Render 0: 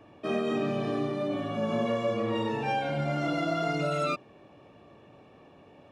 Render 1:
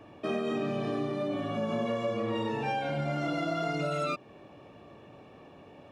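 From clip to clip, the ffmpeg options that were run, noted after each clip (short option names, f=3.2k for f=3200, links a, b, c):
-af "acompressor=threshold=-34dB:ratio=2,volume=2.5dB"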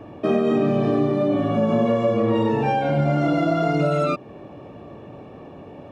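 -af "tiltshelf=f=1.3k:g=5.5,volume=7.5dB"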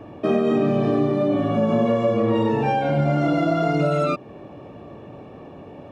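-af anull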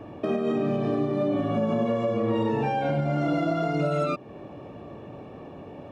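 -af "alimiter=limit=-15dB:level=0:latency=1:release=325,volume=-1.5dB"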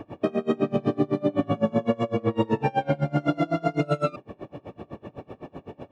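-af "aeval=exprs='val(0)*pow(10,-28*(0.5-0.5*cos(2*PI*7.9*n/s))/20)':c=same,volume=6.5dB"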